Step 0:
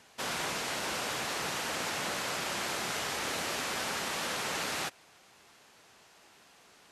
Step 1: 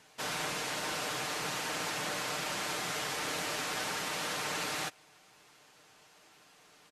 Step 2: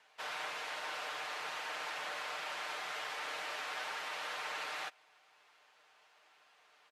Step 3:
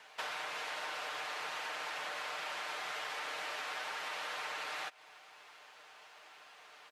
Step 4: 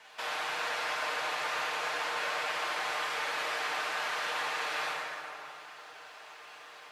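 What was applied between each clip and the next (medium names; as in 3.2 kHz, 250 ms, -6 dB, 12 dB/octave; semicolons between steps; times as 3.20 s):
comb 6.6 ms, depth 47%; trim -2 dB
three-band isolator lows -21 dB, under 510 Hz, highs -13 dB, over 4 kHz; trim -3 dB
compression 10:1, threshold -47 dBFS, peak gain reduction 10.5 dB; trim +9.5 dB
plate-style reverb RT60 2.8 s, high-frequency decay 0.6×, DRR -6.5 dB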